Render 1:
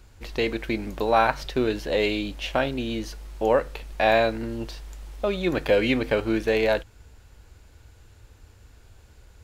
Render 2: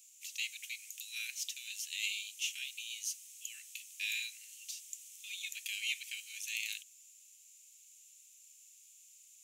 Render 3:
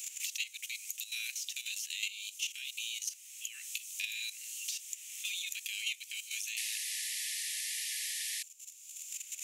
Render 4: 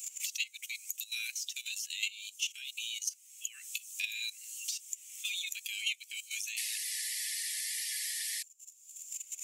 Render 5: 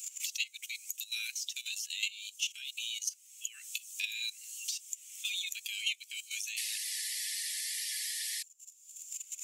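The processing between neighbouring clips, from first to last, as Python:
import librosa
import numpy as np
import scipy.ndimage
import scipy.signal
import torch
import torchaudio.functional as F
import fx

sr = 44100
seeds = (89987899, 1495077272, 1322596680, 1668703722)

y1 = scipy.signal.sosfilt(scipy.signal.butter(8, 2500.0, 'highpass', fs=sr, output='sos'), x)
y1 = fx.high_shelf_res(y1, sr, hz=5500.0, db=7.0, q=3.0)
y1 = y1 * 10.0 ** (-2.0 / 20.0)
y2 = fx.level_steps(y1, sr, step_db=12)
y2 = fx.spec_paint(y2, sr, seeds[0], shape='noise', start_s=6.57, length_s=1.86, low_hz=1700.0, high_hz=12000.0, level_db=-43.0)
y2 = fx.band_squash(y2, sr, depth_pct=100)
y2 = y2 * 10.0 ** (5.0 / 20.0)
y3 = fx.bin_expand(y2, sr, power=1.5)
y3 = y3 * 10.0 ** (4.5 / 20.0)
y4 = scipy.signal.sosfilt(scipy.signal.cheby1(6, 3, 1000.0, 'highpass', fs=sr, output='sos'), y3)
y4 = y4 * 10.0 ** (1.5 / 20.0)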